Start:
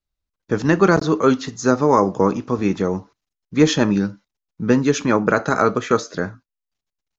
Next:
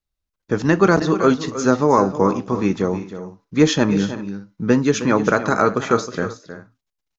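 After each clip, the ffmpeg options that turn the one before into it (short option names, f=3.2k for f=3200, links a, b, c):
-af "aecho=1:1:314|374:0.251|0.106"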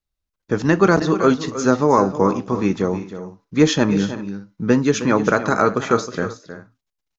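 -af anull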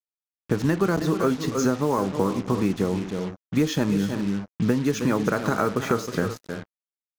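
-af "lowshelf=f=270:g=6,acompressor=threshold=-19dB:ratio=6,acrusher=bits=5:mix=0:aa=0.5"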